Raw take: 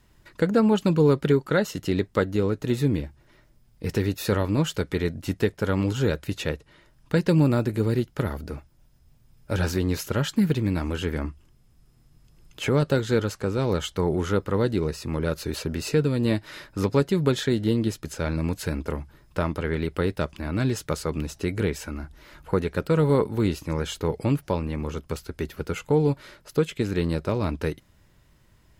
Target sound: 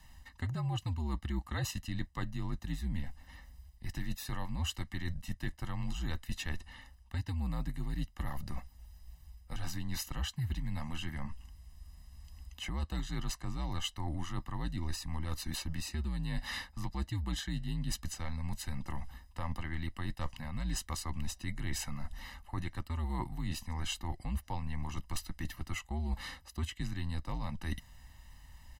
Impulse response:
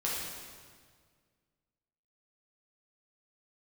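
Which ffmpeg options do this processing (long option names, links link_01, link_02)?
-af "equalizer=frequency=520:width_type=o:width=2:gain=-4,aecho=1:1:1:0.91,areverse,acompressor=threshold=-33dB:ratio=12,areverse,afreqshift=-77,volume=1dB"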